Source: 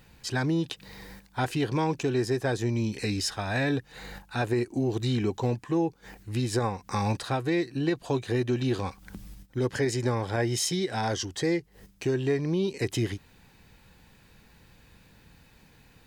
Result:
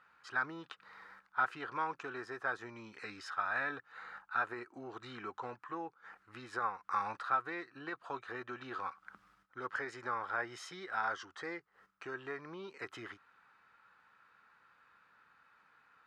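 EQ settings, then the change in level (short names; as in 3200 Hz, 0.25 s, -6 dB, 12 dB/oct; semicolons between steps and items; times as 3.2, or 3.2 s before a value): band-pass 1300 Hz, Q 7.3; +8.5 dB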